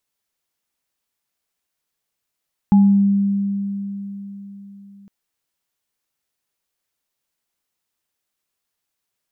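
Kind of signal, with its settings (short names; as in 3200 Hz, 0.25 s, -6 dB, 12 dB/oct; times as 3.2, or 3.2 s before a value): sine partials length 2.36 s, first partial 199 Hz, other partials 835 Hz, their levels -14.5 dB, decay 4.06 s, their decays 0.45 s, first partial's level -7.5 dB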